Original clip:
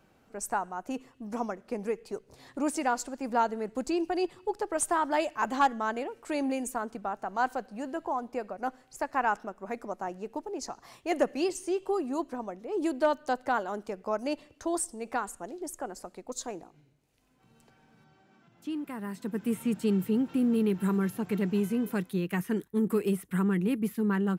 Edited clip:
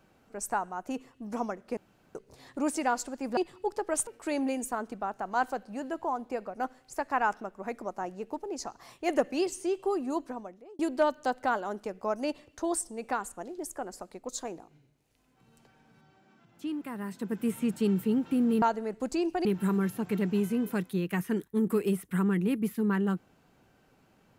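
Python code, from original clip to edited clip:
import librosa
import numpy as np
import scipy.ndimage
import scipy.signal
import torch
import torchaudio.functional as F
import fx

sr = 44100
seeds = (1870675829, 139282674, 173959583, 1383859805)

y = fx.edit(x, sr, fx.room_tone_fill(start_s=1.77, length_s=0.38),
    fx.move(start_s=3.37, length_s=0.83, to_s=20.65),
    fx.cut(start_s=4.9, length_s=1.2),
    fx.fade_out_span(start_s=12.25, length_s=0.57), tone=tone)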